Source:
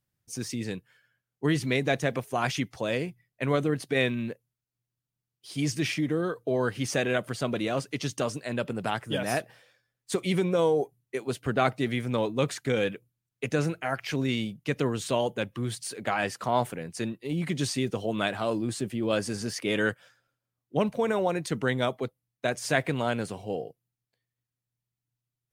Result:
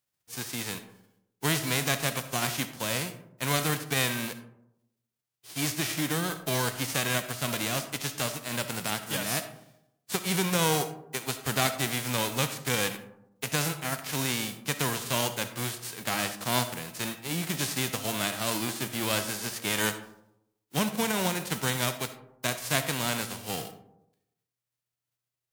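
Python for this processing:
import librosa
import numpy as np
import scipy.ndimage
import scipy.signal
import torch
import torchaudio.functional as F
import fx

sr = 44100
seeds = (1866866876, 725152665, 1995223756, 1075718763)

y = fx.envelope_flatten(x, sr, power=0.3)
y = fx.rev_freeverb(y, sr, rt60_s=0.83, hf_ratio=0.35, predelay_ms=20, drr_db=10.0)
y = y * 10.0 ** (-2.0 / 20.0)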